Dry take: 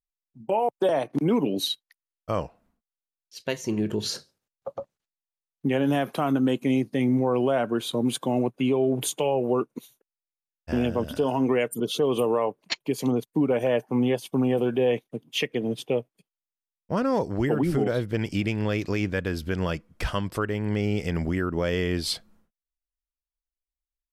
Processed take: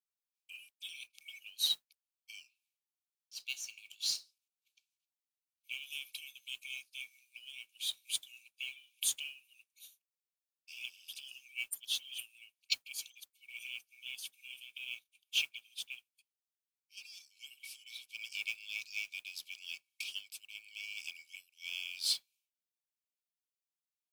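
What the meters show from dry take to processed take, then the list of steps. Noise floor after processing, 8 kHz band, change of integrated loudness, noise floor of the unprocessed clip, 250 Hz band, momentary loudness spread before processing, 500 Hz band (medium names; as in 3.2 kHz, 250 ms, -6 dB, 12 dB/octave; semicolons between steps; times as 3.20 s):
under -85 dBFS, -3.0 dB, -14.0 dB, under -85 dBFS, under -40 dB, 8 LU, under -40 dB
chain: brick-wall FIR high-pass 2.2 kHz; modulation noise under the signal 21 dB; trim -3 dB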